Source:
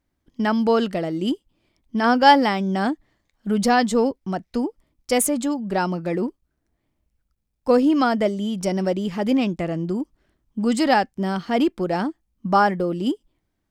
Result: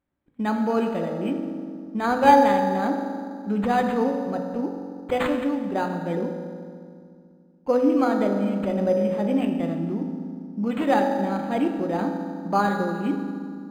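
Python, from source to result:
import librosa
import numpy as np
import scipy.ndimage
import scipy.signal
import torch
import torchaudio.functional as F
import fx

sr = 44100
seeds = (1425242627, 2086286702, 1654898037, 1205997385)

y = fx.low_shelf(x, sr, hz=61.0, db=-11.5)
y = fx.rev_fdn(y, sr, rt60_s=2.2, lf_ratio=1.45, hf_ratio=0.6, size_ms=11.0, drr_db=2.5)
y = np.interp(np.arange(len(y)), np.arange(len(y))[::8], y[::8])
y = y * librosa.db_to_amplitude(-4.5)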